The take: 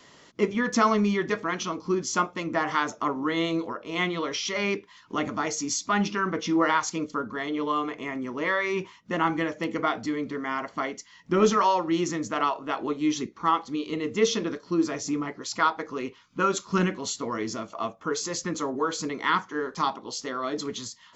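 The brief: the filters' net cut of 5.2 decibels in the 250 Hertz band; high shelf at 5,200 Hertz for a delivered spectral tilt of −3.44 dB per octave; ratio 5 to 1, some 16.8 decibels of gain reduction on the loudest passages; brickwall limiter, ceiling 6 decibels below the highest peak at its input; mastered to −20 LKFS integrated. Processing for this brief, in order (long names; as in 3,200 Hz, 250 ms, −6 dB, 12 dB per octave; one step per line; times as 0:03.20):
parametric band 250 Hz −7.5 dB
high-shelf EQ 5,200 Hz −6.5 dB
downward compressor 5 to 1, threshold −38 dBFS
level +22 dB
brickwall limiter −8.5 dBFS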